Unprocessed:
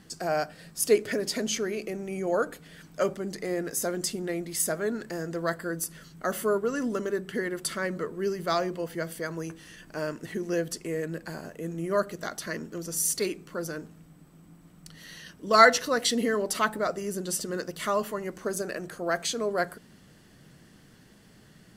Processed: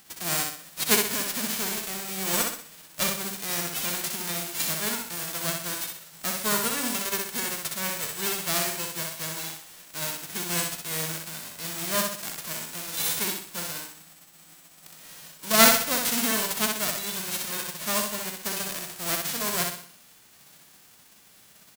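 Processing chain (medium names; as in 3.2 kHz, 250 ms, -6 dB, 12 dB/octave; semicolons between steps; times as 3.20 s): formants flattened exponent 0.1; on a send: feedback delay 63 ms, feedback 40%, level -4 dB; on the sum: trim -1 dB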